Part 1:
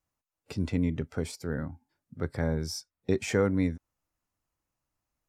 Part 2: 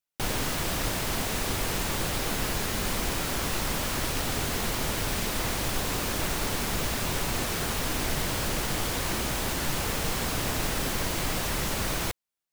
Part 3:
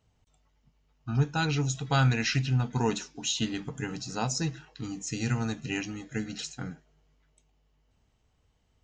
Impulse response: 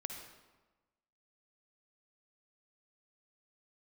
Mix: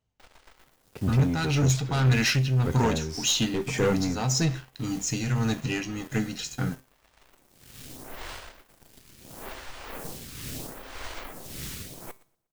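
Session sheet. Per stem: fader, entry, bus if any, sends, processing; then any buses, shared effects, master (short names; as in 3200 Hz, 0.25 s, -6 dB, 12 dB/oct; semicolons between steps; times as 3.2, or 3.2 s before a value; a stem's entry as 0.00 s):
-9.0 dB, 0.45 s, no send, no echo send, AGC gain up to 8 dB; low-pass opened by the level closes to 2000 Hz, open at -16 dBFS
-11.0 dB, 0.00 s, no send, echo send -14.5 dB, photocell phaser 0.75 Hz; auto duck -16 dB, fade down 0.50 s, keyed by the third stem
+1.5 dB, 0.00 s, no send, no echo send, dry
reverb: off
echo: feedback echo 0.119 s, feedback 54%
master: sample leveller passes 3; resonator 130 Hz, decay 0.32 s, harmonics all, mix 50%; tremolo 1.8 Hz, depth 49%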